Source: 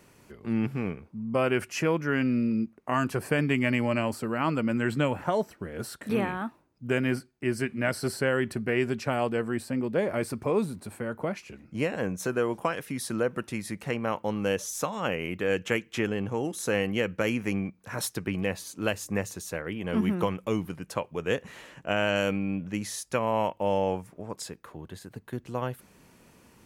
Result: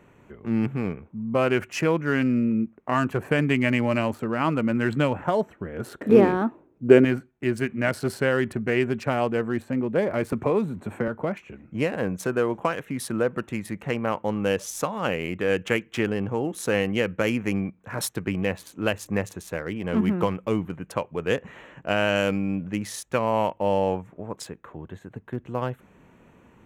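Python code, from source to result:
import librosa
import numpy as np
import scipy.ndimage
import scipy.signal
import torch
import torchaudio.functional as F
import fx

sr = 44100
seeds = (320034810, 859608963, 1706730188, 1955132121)

y = fx.wiener(x, sr, points=9)
y = fx.peak_eq(y, sr, hz=380.0, db=12.5, octaves=1.5, at=(5.86, 7.05))
y = fx.band_squash(y, sr, depth_pct=70, at=(10.32, 11.08))
y = F.gain(torch.from_numpy(y), 3.5).numpy()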